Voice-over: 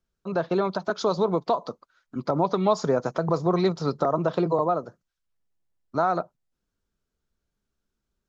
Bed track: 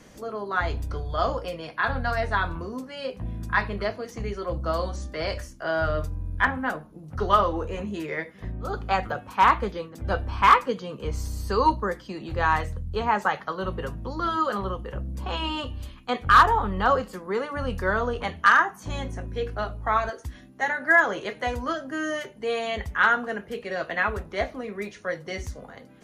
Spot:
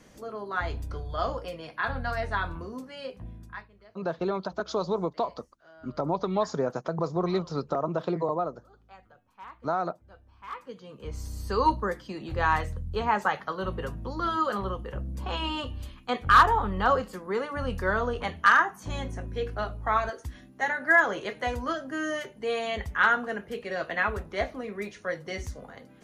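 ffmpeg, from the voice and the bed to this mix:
-filter_complex "[0:a]adelay=3700,volume=0.562[s0];[1:a]volume=11.2,afade=t=out:st=2.94:d=0.74:silence=0.0707946,afade=t=in:st=10.47:d=1.26:silence=0.0530884[s1];[s0][s1]amix=inputs=2:normalize=0"

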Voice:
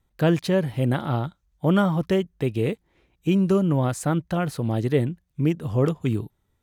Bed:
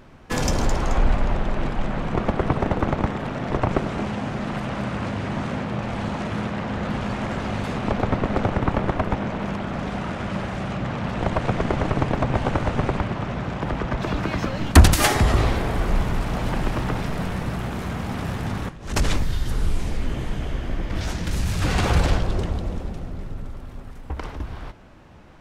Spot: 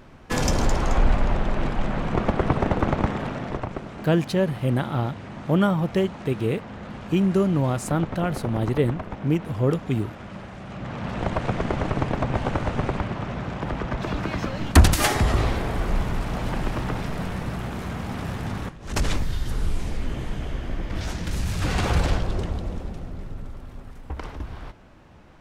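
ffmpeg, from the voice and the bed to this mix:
-filter_complex "[0:a]adelay=3850,volume=0.944[s0];[1:a]volume=2.51,afade=t=out:st=3.21:d=0.49:silence=0.298538,afade=t=in:st=10.64:d=0.5:silence=0.398107[s1];[s0][s1]amix=inputs=2:normalize=0"

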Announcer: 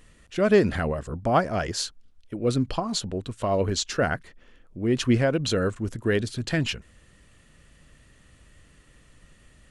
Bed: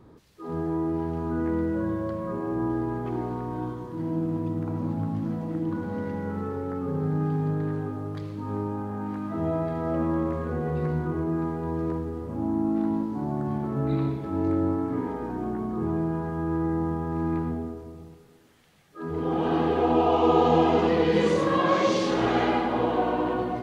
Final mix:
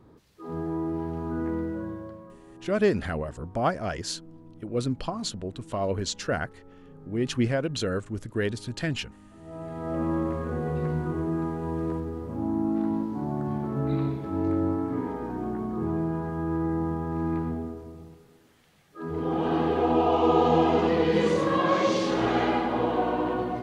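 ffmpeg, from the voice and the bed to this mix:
-filter_complex "[0:a]adelay=2300,volume=0.631[s0];[1:a]volume=7.08,afade=t=out:st=1.47:d=0.9:silence=0.125893,afade=t=in:st=9.44:d=0.65:silence=0.105925[s1];[s0][s1]amix=inputs=2:normalize=0"

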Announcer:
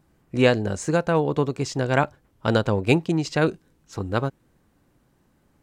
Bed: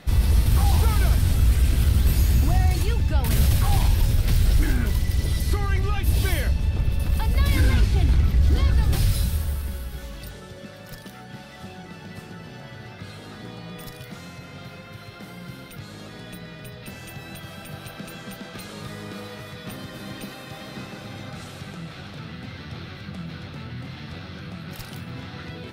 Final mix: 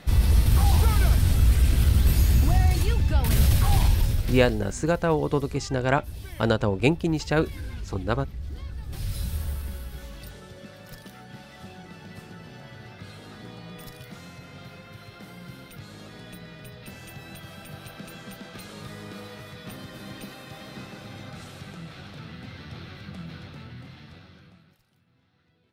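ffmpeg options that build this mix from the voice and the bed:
-filter_complex "[0:a]adelay=3950,volume=0.794[s0];[1:a]volume=4.22,afade=t=out:st=3.86:d=0.74:silence=0.149624,afade=t=in:st=8.86:d=0.6:silence=0.223872,afade=t=out:st=23.3:d=1.49:silence=0.0446684[s1];[s0][s1]amix=inputs=2:normalize=0"

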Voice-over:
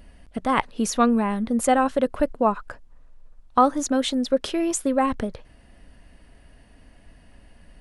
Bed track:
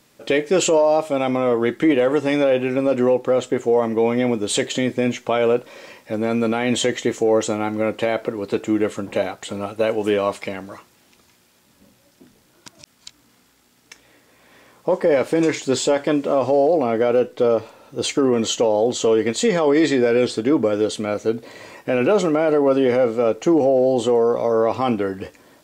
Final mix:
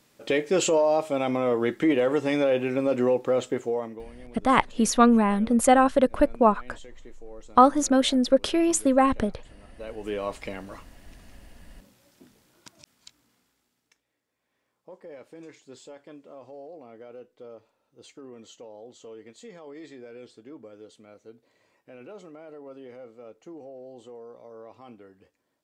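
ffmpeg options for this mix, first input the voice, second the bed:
-filter_complex "[0:a]adelay=4000,volume=1.19[s0];[1:a]volume=7.94,afade=t=out:st=3.44:d=0.61:silence=0.0749894,afade=t=in:st=9.71:d=1.11:silence=0.0668344,afade=t=out:st=12.18:d=1.86:silence=0.0749894[s1];[s0][s1]amix=inputs=2:normalize=0"

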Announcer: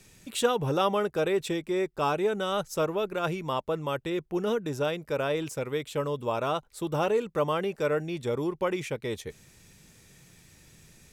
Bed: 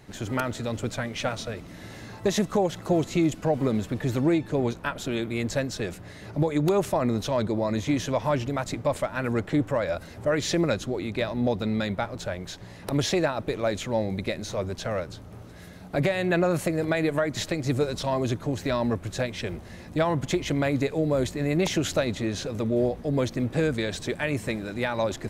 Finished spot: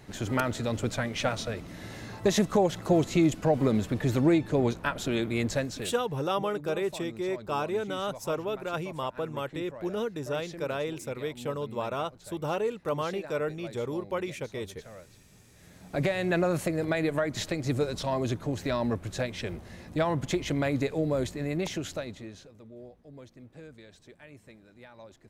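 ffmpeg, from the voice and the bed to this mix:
-filter_complex "[0:a]adelay=5500,volume=0.668[s0];[1:a]volume=5.96,afade=t=out:st=5.41:d=0.68:silence=0.11885,afade=t=in:st=15.51:d=0.55:silence=0.16788,afade=t=out:st=21:d=1.54:silence=0.1[s1];[s0][s1]amix=inputs=2:normalize=0"

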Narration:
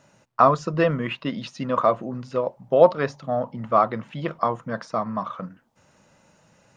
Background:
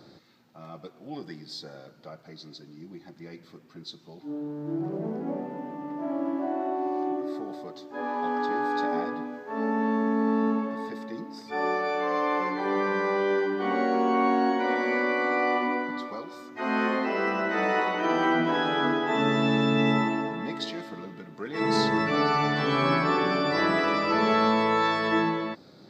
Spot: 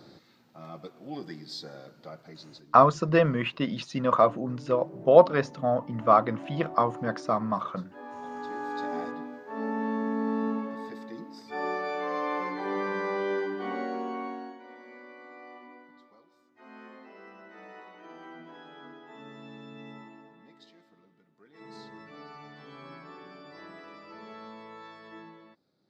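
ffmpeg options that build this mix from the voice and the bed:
-filter_complex "[0:a]adelay=2350,volume=0.891[s0];[1:a]volume=2.24,afade=t=out:st=2.19:d=0.64:silence=0.266073,afade=t=in:st=8.29:d=0.76:silence=0.446684,afade=t=out:st=13.4:d=1.19:silence=0.11885[s1];[s0][s1]amix=inputs=2:normalize=0"

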